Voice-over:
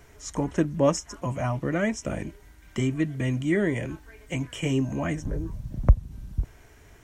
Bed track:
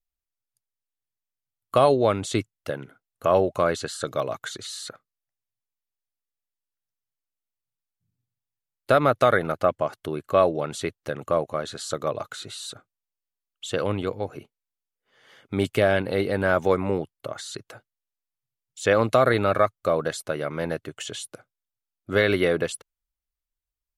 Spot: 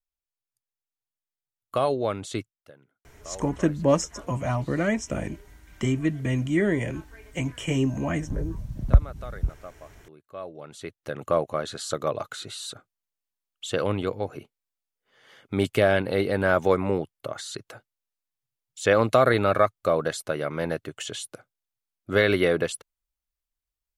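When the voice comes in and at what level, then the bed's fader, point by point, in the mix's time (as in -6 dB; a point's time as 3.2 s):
3.05 s, +1.0 dB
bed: 2.39 s -6 dB
2.73 s -21.5 dB
10.28 s -21.5 dB
11.24 s 0 dB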